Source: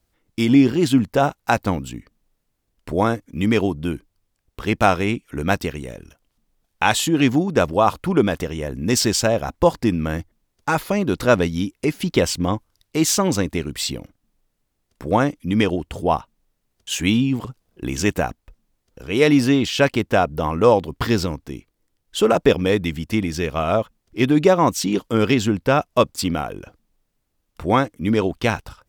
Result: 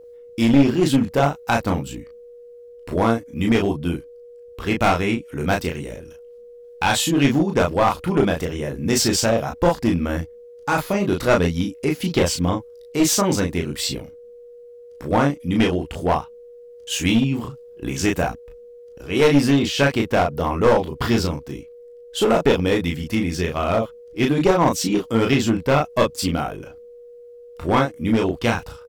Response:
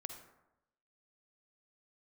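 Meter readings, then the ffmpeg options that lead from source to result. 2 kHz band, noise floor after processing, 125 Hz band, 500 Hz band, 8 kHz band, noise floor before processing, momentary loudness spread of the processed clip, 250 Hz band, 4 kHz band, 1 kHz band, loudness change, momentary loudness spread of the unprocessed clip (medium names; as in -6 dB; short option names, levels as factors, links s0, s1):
0.0 dB, -43 dBFS, +0.5 dB, -0.5 dB, +0.5 dB, -73 dBFS, 13 LU, 0.0 dB, +0.5 dB, -0.5 dB, -0.5 dB, 12 LU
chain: -af "aeval=exprs='val(0)+0.0112*sin(2*PI*480*n/s)':c=same,aecho=1:1:22|35:0.398|0.631,aeval=exprs='clip(val(0),-1,0.237)':c=same,volume=0.841"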